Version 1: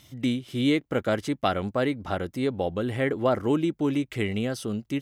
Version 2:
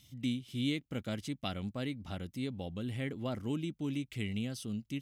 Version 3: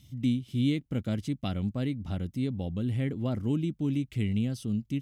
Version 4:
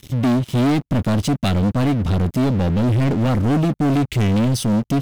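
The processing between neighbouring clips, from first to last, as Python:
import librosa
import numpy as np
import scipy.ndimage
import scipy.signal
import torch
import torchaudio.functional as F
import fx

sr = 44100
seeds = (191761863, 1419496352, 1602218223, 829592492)

y1 = fx.band_shelf(x, sr, hz=780.0, db=-10.5, octaves=2.8)
y1 = y1 * 10.0 ** (-6.5 / 20.0)
y2 = fx.low_shelf(y1, sr, hz=390.0, db=11.5)
y2 = y2 * 10.0 ** (-1.0 / 20.0)
y3 = fx.leveller(y2, sr, passes=5)
y3 = y3 * 10.0 ** (2.0 / 20.0)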